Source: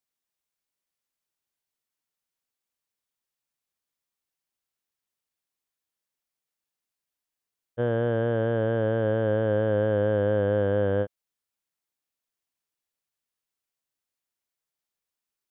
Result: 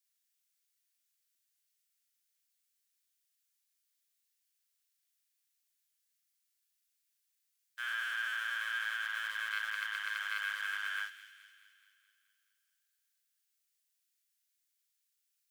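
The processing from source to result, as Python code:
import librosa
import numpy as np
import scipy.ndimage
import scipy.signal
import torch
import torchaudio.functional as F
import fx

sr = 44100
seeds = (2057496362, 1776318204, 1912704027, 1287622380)

y = fx.doubler(x, sr, ms=38.0, db=-2.5)
y = fx.leveller(y, sr, passes=1)
y = scipy.signal.sosfilt(scipy.signal.butter(6, 1400.0, 'highpass', fs=sr, output='sos'), y)
y = fx.high_shelf(y, sr, hz=3100.0, db=9.0)
y = fx.echo_wet_highpass(y, sr, ms=213, feedback_pct=58, hz=2200.0, wet_db=-11.5)
y = y * 10.0 ** (-1.5 / 20.0)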